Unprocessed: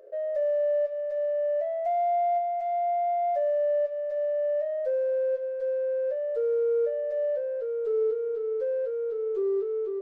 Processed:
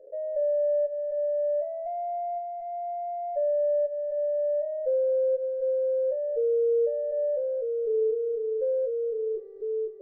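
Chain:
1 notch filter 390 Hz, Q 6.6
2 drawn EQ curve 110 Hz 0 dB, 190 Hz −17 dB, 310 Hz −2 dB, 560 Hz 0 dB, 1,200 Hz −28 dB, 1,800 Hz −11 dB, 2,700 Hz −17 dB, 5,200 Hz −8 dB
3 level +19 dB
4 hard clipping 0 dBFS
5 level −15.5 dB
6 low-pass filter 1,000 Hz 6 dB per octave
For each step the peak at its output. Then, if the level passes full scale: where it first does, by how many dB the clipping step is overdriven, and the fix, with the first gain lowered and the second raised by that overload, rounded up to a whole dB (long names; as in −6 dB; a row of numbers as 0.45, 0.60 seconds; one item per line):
−19.5, −21.5, −2.5, −2.5, −18.0, −19.0 dBFS
no step passes full scale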